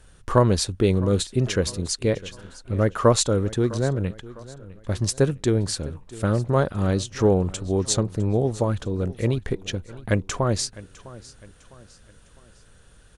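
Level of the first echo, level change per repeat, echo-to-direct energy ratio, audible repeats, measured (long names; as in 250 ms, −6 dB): −19.0 dB, −7.5 dB, −18.0 dB, 3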